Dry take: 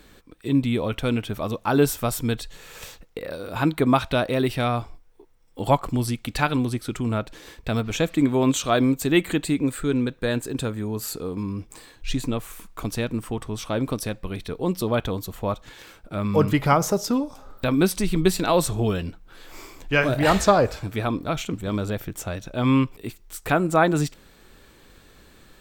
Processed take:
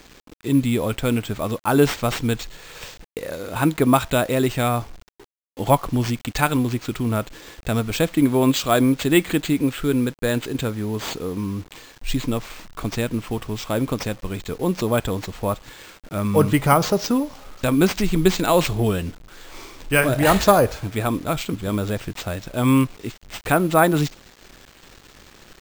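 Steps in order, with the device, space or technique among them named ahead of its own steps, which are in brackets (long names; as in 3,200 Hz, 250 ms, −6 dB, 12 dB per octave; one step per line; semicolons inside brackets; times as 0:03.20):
early 8-bit sampler (sample-rate reduction 11,000 Hz, jitter 0%; bit reduction 8 bits)
level +2.5 dB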